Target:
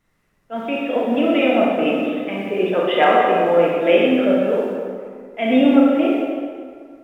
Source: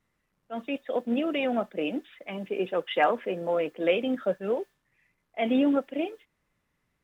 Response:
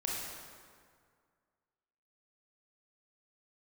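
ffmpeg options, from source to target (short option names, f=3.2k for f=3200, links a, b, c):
-filter_complex "[0:a]asettb=1/sr,asplit=3[a][b][c];[a]atrim=end=4.404[d];[b]atrim=start=4.4:end=5.52,asetpts=PTS-STARTPTS,afade=t=in:d=0.004:c=qsin,afade=t=out:st=1.116:d=0.004:c=qsin,equalizer=f=630:t=o:w=2:g=-4.5[e];[c]atrim=start=5.516[f];[d][e]acrossfade=d=0.004:c1=hsin:c2=qsin[g];[g][f]acrossfade=d=0.004:c1=qsin:c2=hsin[h];[1:a]atrim=start_sample=2205,asetrate=43659,aresample=44100[i];[h][i]afir=irnorm=-1:irlink=0,volume=7.5dB"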